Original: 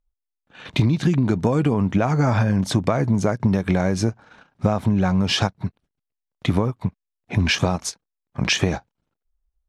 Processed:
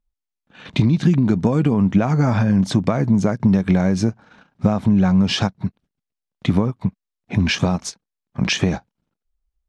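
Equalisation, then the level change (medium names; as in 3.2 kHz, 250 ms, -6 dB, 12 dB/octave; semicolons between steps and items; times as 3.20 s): distance through air 63 m; peaking EQ 200 Hz +6.5 dB 0.98 oct; treble shelf 5 kHz +6.5 dB; -1.0 dB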